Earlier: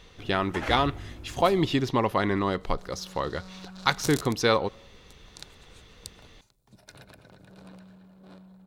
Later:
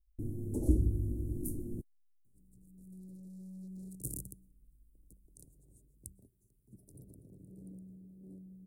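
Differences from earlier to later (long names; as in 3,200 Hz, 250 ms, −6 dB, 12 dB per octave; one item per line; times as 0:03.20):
speech: muted
first sound +7.5 dB
master: add Chebyshev band-stop filter 360–9,400 Hz, order 3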